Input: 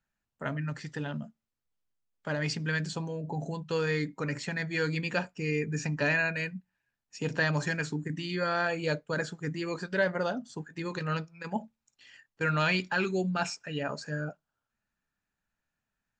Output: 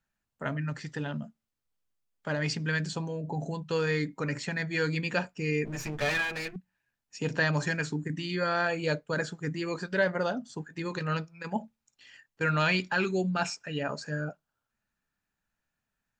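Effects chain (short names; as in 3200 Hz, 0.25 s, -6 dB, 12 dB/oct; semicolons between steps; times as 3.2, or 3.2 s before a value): 5.65–6.56 minimum comb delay 8.5 ms; gain +1 dB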